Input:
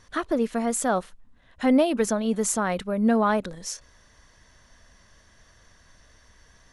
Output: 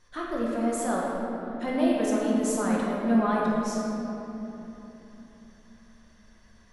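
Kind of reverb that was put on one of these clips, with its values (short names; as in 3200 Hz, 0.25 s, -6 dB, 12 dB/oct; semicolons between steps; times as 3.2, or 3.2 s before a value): shoebox room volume 210 m³, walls hard, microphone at 0.89 m; gain -9.5 dB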